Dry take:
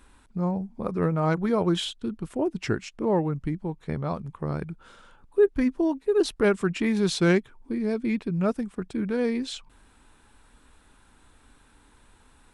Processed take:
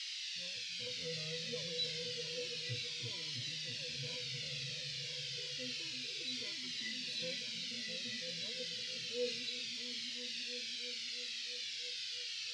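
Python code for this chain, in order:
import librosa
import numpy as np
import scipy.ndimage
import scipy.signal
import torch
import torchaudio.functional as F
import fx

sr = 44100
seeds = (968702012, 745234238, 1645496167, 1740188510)

p1 = scipy.signal.sosfilt(scipy.signal.butter(2, 92.0, 'highpass', fs=sr, output='sos'), x)
p2 = fx.low_shelf(p1, sr, hz=200.0, db=-9.0)
p3 = fx.hum_notches(p2, sr, base_hz=50, count=3)
p4 = fx.octave_resonator(p3, sr, note='B', decay_s=0.18)
p5 = p4 + fx.echo_opening(p4, sr, ms=331, hz=200, octaves=2, feedback_pct=70, wet_db=-3, dry=0)
p6 = fx.dmg_noise_band(p5, sr, seeds[0], low_hz=1300.0, high_hz=5000.0, level_db=-53.0)
p7 = fx.curve_eq(p6, sr, hz=(160.0, 280.0, 440.0, 1000.0, 2600.0, 11000.0), db=(0, -19, -4, -19, 9, 15))
p8 = fx.transient(p7, sr, attack_db=-2, sustain_db=3)
p9 = fx.comb_cascade(p8, sr, direction='falling', hz=0.3)
y = p9 * librosa.db_to_amplitude(4.5)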